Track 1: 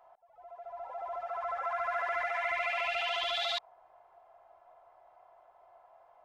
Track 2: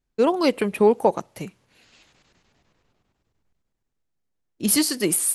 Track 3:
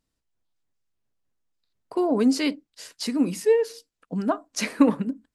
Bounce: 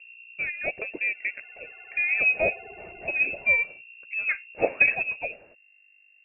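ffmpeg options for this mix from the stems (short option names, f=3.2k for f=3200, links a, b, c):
-filter_complex "[0:a]volume=-18dB[a];[1:a]adelay=200,volume=-11dB[b];[2:a]aeval=exprs='val(0)+0.00631*(sin(2*PI*60*n/s)+sin(2*PI*2*60*n/s)/2+sin(2*PI*3*60*n/s)/3+sin(2*PI*4*60*n/s)/4+sin(2*PI*5*60*n/s)/5)':c=same,volume=-2dB[c];[a][b][c]amix=inputs=3:normalize=0,aeval=exprs='val(0)+0.00141*(sin(2*PI*50*n/s)+sin(2*PI*2*50*n/s)/2+sin(2*PI*3*50*n/s)/3+sin(2*PI*4*50*n/s)/4+sin(2*PI*5*50*n/s)/5)':c=same,lowpass=f=2.4k:t=q:w=0.5098,lowpass=f=2.4k:t=q:w=0.6013,lowpass=f=2.4k:t=q:w=0.9,lowpass=f=2.4k:t=q:w=2.563,afreqshift=-2800,lowshelf=f=790:t=q:w=3:g=9.5"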